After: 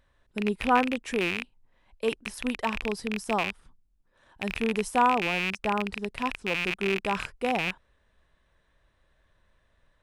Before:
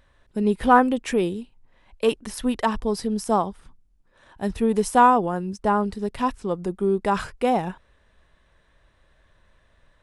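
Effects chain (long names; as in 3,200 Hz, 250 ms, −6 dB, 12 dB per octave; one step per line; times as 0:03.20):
loose part that buzzes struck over −39 dBFS, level −10 dBFS
level −7 dB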